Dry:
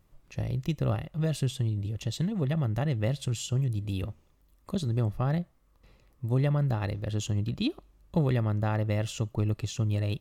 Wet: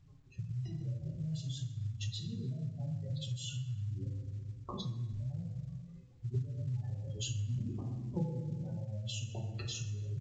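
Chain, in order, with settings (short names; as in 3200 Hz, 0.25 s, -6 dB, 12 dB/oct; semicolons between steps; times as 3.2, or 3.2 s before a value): 1.34–1.77 switching spikes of -27.5 dBFS; level quantiser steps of 23 dB; 7.17–7.67 sample leveller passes 3; flange 0.7 Hz, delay 7 ms, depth 2.2 ms, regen +37%; spectral gate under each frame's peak -15 dB strong; 4.82–6.25 steep low-pass 5000 Hz 36 dB/oct; reverb RT60 1.1 s, pre-delay 3 ms, DRR -5 dB; compressor 3:1, threshold -44 dBFS, peak gain reduction 19.5 dB; speakerphone echo 0.24 s, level -26 dB; gain +5.5 dB; µ-law 128 kbps 16000 Hz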